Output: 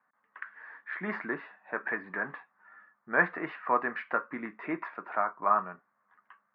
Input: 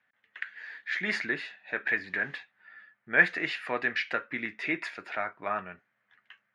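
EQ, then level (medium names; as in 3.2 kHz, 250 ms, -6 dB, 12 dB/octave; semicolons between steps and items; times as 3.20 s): resonant low-pass 1.1 kHz, resonance Q 4.9; resonant low shelf 130 Hz -9 dB, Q 1.5; -1.5 dB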